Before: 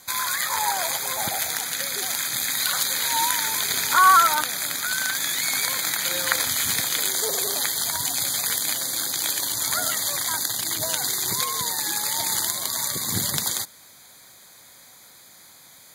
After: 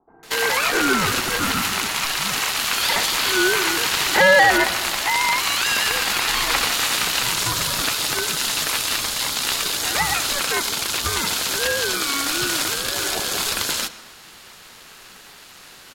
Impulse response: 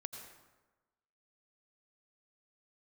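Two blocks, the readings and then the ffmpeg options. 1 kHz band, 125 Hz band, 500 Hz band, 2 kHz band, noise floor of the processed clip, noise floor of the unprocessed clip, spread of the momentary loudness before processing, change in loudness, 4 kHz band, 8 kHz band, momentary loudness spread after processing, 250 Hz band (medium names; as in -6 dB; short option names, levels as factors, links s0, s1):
+1.0 dB, +5.0 dB, +12.0 dB, +7.5 dB, -45 dBFS, -49 dBFS, 4 LU, +3.0 dB, +5.5 dB, 0.0 dB, 4 LU, +10.5 dB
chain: -filter_complex "[0:a]acrossover=split=350[s0][s1];[s1]adelay=230[s2];[s0][s2]amix=inputs=2:normalize=0,asplit=2[s3][s4];[s4]highpass=f=720:p=1,volume=7.08,asoftclip=type=tanh:threshold=0.944[s5];[s3][s5]amix=inputs=2:normalize=0,lowpass=f=3500:p=1,volume=0.501,aeval=exprs='val(0)*sin(2*PI*560*n/s)':c=same,asplit=2[s6][s7];[1:a]atrim=start_sample=2205,lowpass=5800[s8];[s7][s8]afir=irnorm=-1:irlink=0,volume=0.562[s9];[s6][s9]amix=inputs=2:normalize=0,acontrast=88,volume=0.447"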